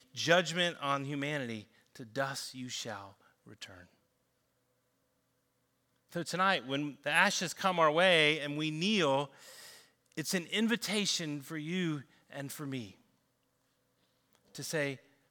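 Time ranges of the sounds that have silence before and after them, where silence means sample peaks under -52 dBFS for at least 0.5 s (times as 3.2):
6.12–12.92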